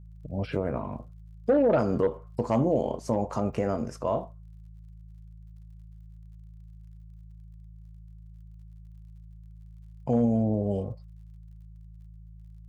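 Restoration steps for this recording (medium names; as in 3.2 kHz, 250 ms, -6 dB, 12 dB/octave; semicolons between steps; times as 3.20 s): de-click; de-hum 54.1 Hz, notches 3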